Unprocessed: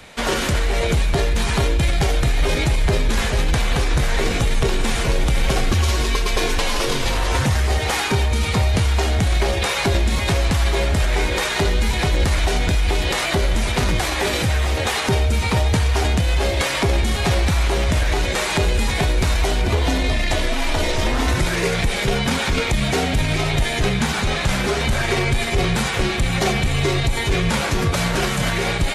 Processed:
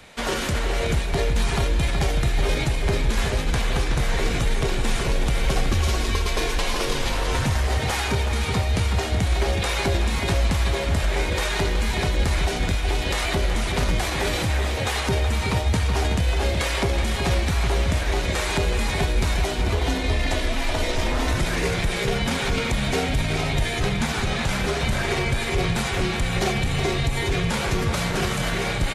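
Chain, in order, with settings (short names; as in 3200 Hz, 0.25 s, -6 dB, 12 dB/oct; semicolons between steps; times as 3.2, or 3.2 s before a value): outdoor echo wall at 64 m, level -6 dB; gain -4.5 dB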